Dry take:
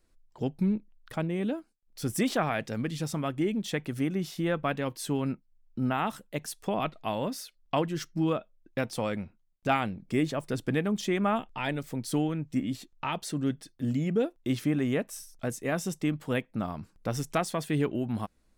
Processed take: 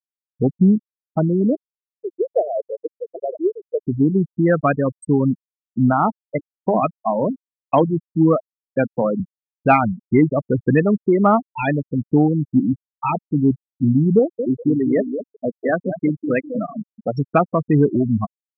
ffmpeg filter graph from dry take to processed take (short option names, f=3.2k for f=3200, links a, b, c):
-filter_complex "[0:a]asettb=1/sr,asplit=3[a][b][c];[a]atrim=end=1.554[d];[b]atrim=start=1.55:end=3.85,asetpts=PTS-STARTPTS,afade=t=in:d=0.004:c=qsin,afade=t=out:st=2.296:d=0.004:c=qsin,asuperpass=centerf=500:order=8:qfactor=1.5,aecho=1:1:962:0.237,atrim=end_sample=101430[e];[c]atrim=start=3.846[f];[d][e]acrossfade=d=0.004:c1=hsin:c2=qsin[g];[g][f]acrossfade=d=0.004:c1=qsin:c2=hsin,asettb=1/sr,asplit=3[h][i][j];[h]atrim=end=6.224[k];[i]atrim=start=6.22:end=9.2,asetpts=PTS-STARTPTS,afade=t=in:d=0.004:c=qsin,afade=t=out:st=2.976:d=0.004:c=qsin,highpass=f=120:w=0.5412,highpass=f=120:w=1.3066,bandreject=f=50:t=h:w=6,bandreject=f=100:t=h:w=6,bandreject=f=150:t=h:w=6,bandreject=f=200:t=h:w=6,bandreject=f=250:t=h:w=6,bandreject=f=300:t=h:w=6[l];[j]atrim=start=9.196[m];[k][l]acrossfade=d=0.004:c1=hsin:c2=qsin[n];[n][m]acrossfade=d=0.004:c1=qsin:c2=hsin,asettb=1/sr,asplit=3[o][p][q];[o]atrim=end=10.834[r];[p]atrim=start=10.83:end=11.26,asetpts=PTS-STARTPTS,afade=t=in:d=0.004:c=qsin,afade=t=out:st=0.426:d=0.004:c=qsin,lowpass=1.7k,asplit=2[s][t];[t]highpass=f=720:p=1,volume=12dB,asoftclip=type=tanh:threshold=-16dB[u];[s][u]amix=inputs=2:normalize=0,lowpass=f=1.2k:p=1,volume=-6dB[v];[q]atrim=start=11.256[w];[r][v]acrossfade=d=0.004:c1=hsin:c2=qsin[x];[x][w]acrossfade=d=0.004:c1=qsin:c2=hsin,asettb=1/sr,asplit=3[y][z][aa];[y]atrim=end=14.194[ab];[z]atrim=start=14.19:end=17.18,asetpts=PTS-STARTPTS,afade=t=in:d=0.004:c=qsin,afade=t=out:st=2.986:d=0.004:c=qsin,highpass=f=320:p=1,aecho=1:1:200|400|600|800:0.473|0.175|0.0648|0.024,atrim=end_sample=131859[ac];[aa]atrim=start=17.176[ad];[ab][ac]acrossfade=d=0.004:c1=hsin:c2=qsin[ae];[ae][ad]acrossfade=d=0.004:c1=qsin:c2=hsin,afftfilt=real='re*gte(hypot(re,im),0.0794)':imag='im*gte(hypot(re,im),0.0794)':win_size=1024:overlap=0.75,acontrast=83,volume=6dB"